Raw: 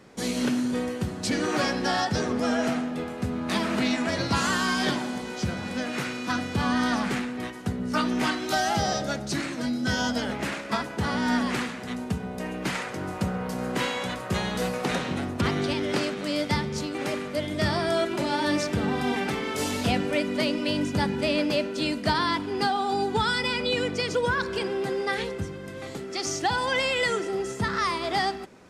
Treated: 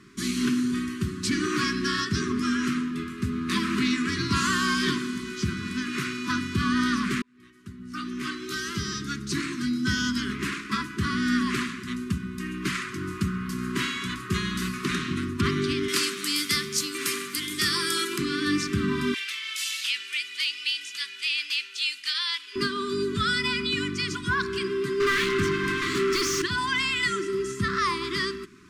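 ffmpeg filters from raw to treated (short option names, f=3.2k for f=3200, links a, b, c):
-filter_complex "[0:a]asettb=1/sr,asplit=3[a][b][c];[a]atrim=end=15.884[d];[b]atrim=start=15.88:end=18.18,asetpts=PTS-STARTPTS,afade=t=in:d=0.004:c=qsin,afade=t=out:st=2.296:d=0.004:c=qsin,aemphasis=mode=production:type=riaa[e];[c]atrim=start=18.176[f];[d][e]acrossfade=d=0.004:c1=hsin:c2=qsin[g];[g][f]acrossfade=d=0.004:c1=qsin:c2=hsin,asettb=1/sr,asplit=3[h][i][j];[h]atrim=end=19.144[k];[i]atrim=start=19.14:end=22.56,asetpts=PTS-STARTPTS,afade=t=in:d=0.004:c=qsin,afade=t=out:st=3.416:d=0.004:c=qsin,highpass=f=2.8k:t=q:w=1.7[l];[j]atrim=start=22.556[m];[k][l]acrossfade=d=0.004:c1=hsin:c2=qsin[n];[n][m]acrossfade=d=0.004:c1=qsin:c2=hsin,asettb=1/sr,asplit=3[o][p][q];[o]atrim=end=25.004[r];[p]atrim=start=25:end=26.42,asetpts=PTS-STARTPTS,afade=t=in:d=0.004:c=qsin,afade=t=out:st=1.416:d=0.004:c=qsin,asplit=2[s][t];[t]highpass=f=720:p=1,volume=30dB,asoftclip=type=tanh:threshold=-15.5dB[u];[s][u]amix=inputs=2:normalize=0,lowpass=f=2.3k:p=1,volume=-6dB[v];[q]atrim=start=26.416[w];[r][v]acrossfade=d=0.004:c1=hsin:c2=qsin[x];[x][w]acrossfade=d=0.004:c1=qsin:c2=hsin,asplit=2[y][z];[y]atrim=end=7.22,asetpts=PTS-STARTPTS,afade=t=out:st=7.216:d=0.004:c=hsin[aa];[z]atrim=start=7.22,asetpts=PTS-STARTPTS,afade=t=in:d=2.32[ab];[aa][ab]concat=n=2:v=0:a=1,acontrast=42,afftfilt=real='re*(1-between(b*sr/4096,410,1000))':imag='im*(1-between(b*sr/4096,410,1000))':win_size=4096:overlap=0.75,volume=-4.5dB"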